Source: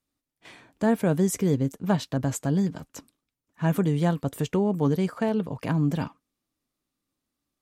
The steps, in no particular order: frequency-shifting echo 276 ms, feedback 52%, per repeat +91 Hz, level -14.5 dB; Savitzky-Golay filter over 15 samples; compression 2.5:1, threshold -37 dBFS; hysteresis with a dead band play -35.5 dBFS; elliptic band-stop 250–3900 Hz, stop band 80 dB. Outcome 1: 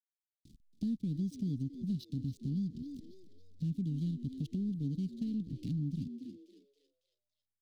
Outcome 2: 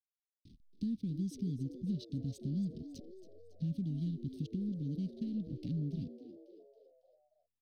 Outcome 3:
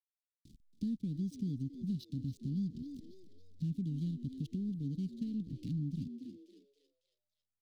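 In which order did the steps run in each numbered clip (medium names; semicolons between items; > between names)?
Savitzky-Golay filter > hysteresis with a dead band > frequency-shifting echo > elliptic band-stop > compression; hysteresis with a dead band > compression > elliptic band-stop > frequency-shifting echo > Savitzky-Golay filter; Savitzky-Golay filter > hysteresis with a dead band > frequency-shifting echo > compression > elliptic band-stop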